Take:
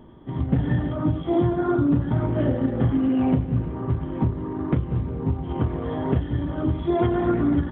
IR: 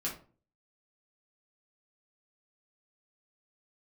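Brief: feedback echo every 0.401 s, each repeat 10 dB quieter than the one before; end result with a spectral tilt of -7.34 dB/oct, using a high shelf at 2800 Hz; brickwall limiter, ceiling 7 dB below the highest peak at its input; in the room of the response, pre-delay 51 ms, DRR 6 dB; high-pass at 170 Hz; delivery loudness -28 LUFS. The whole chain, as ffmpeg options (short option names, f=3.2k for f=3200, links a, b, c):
-filter_complex "[0:a]highpass=170,highshelf=f=2.8k:g=-5,alimiter=limit=-17dB:level=0:latency=1,aecho=1:1:401|802|1203|1604:0.316|0.101|0.0324|0.0104,asplit=2[a][b];[1:a]atrim=start_sample=2205,adelay=51[c];[b][c]afir=irnorm=-1:irlink=0,volume=-8.5dB[d];[a][d]amix=inputs=2:normalize=0,volume=-2dB"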